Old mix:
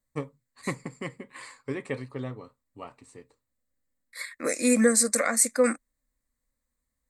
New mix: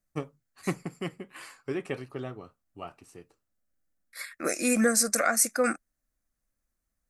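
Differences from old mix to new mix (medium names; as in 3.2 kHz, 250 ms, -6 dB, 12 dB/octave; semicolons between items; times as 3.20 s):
first voice: remove low-pass 9.7 kHz 24 dB/octave; master: remove rippled EQ curve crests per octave 1, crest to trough 9 dB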